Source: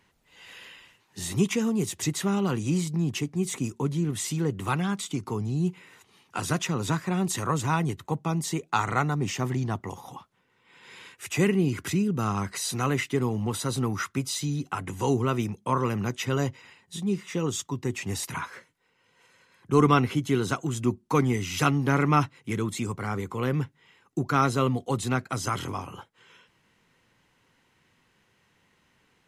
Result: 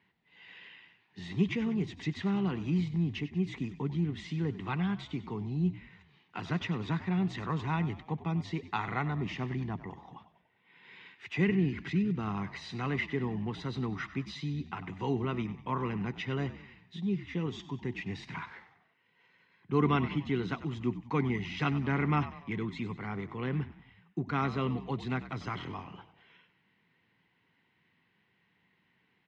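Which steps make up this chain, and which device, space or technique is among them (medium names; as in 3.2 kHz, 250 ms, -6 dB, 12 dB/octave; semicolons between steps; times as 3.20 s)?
9.69–10.16 s: peaking EQ 4.2 kHz -5.5 dB 2 oct; frequency-shifting delay pedal into a guitar cabinet (frequency-shifting echo 96 ms, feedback 53%, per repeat -64 Hz, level -14 dB; cabinet simulation 93–3900 Hz, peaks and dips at 180 Hz +5 dB, 550 Hz -7 dB, 1.3 kHz -5 dB, 2 kHz +5 dB); trim -6.5 dB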